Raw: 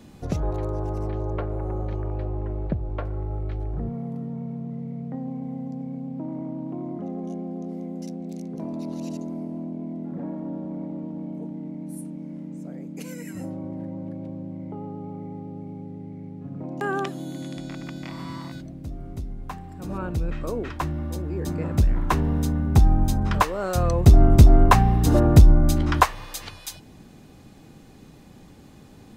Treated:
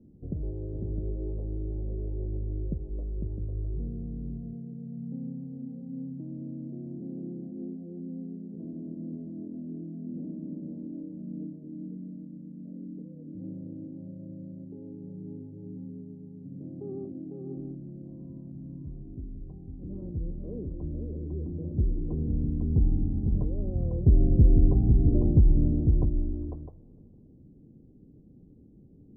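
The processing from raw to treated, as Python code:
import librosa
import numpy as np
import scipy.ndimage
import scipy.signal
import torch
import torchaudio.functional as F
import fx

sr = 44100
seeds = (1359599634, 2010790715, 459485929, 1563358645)

y = fx.rattle_buzz(x, sr, strikes_db=-20.0, level_db=-19.0)
y = scipy.signal.sosfilt(scipy.signal.cheby2(4, 70, 1900.0, 'lowpass', fs=sr, output='sos'), y)
y = fx.echo_multitap(y, sr, ms=(501, 658), db=(-5.0, -10.0))
y = F.gain(torch.from_numpy(y), -7.0).numpy()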